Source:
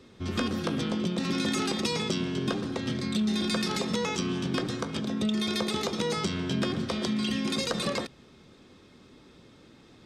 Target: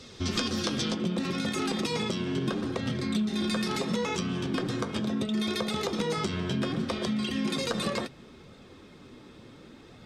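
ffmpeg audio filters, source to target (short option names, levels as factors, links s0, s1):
-af "asetnsamples=n=441:p=0,asendcmd='0.94 equalizer g -3.5',equalizer=f=5500:t=o:w=1.6:g=11,acompressor=threshold=0.0251:ratio=3,flanger=delay=1.4:depth=8.1:regen=-44:speed=0.7:shape=sinusoidal,volume=2.66"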